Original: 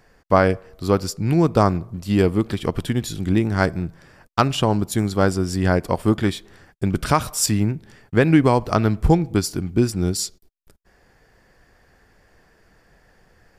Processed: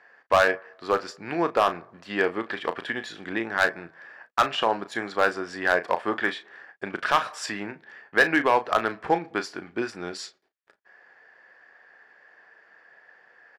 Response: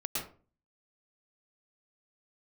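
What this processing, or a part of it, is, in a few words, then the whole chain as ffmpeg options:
megaphone: -filter_complex "[0:a]highpass=620,lowpass=2700,equalizer=frequency=1700:width_type=o:width=0.27:gain=9,asoftclip=type=hard:threshold=-13dB,asplit=2[link_01][link_02];[link_02]adelay=35,volume=-11dB[link_03];[link_01][link_03]amix=inputs=2:normalize=0,volume=1.5dB"

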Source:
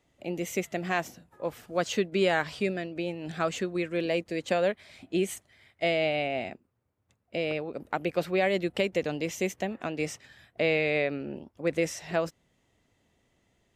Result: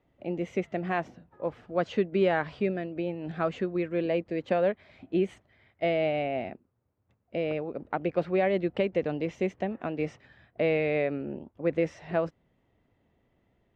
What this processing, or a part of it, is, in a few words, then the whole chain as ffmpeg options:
phone in a pocket: -af "lowpass=3600,highshelf=frequency=2100:gain=-11,volume=1.5dB"

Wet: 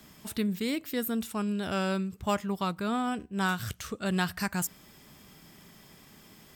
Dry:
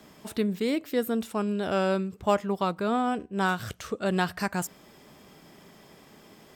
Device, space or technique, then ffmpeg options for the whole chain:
smiley-face EQ: -af "lowshelf=frequency=130:gain=4.5,equalizer=frequency=520:width_type=o:width=1.9:gain=-8,highshelf=frequency=9500:gain=7.5"

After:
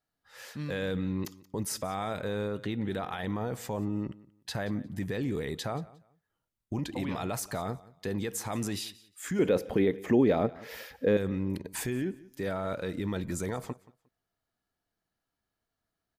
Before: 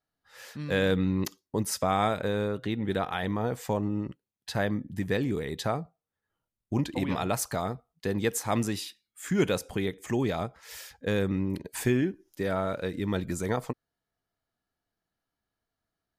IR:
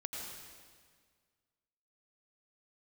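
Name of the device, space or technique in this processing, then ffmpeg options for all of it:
stacked limiters: -filter_complex "[0:a]alimiter=limit=-18.5dB:level=0:latency=1:release=165,alimiter=level_in=0.5dB:limit=-24dB:level=0:latency=1:release=15,volume=-0.5dB,asettb=1/sr,asplit=3[link_01][link_02][link_03];[link_01]atrim=end=9.394[link_04];[link_02]atrim=start=9.39:end=11.17,asetpts=PTS-STARTPTS,afade=type=in:duration=0.004:curve=qsin,afade=type=out:start_time=1.776:duration=0.004:curve=qsin,equalizer=frequency=250:width_type=o:width=1:gain=9,equalizer=frequency=500:width_type=o:width=1:gain=10,equalizer=frequency=2000:width_type=o:width=1:gain=4,equalizer=frequency=8000:width_type=o:width=1:gain=-12[link_05];[link_03]atrim=start=11.166[link_06];[link_04][link_05]acrossfade=duration=0.004:curve1=hsin:curve2=qsin[link_07];[link_07][link_06]acrossfade=duration=0.004:curve1=qsin:curve2=hsin,aecho=1:1:178|356:0.0891|0.0196"

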